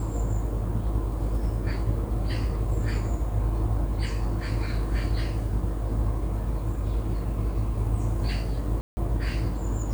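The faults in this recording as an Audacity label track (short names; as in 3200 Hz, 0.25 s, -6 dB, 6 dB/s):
8.810000	8.970000	gap 0.16 s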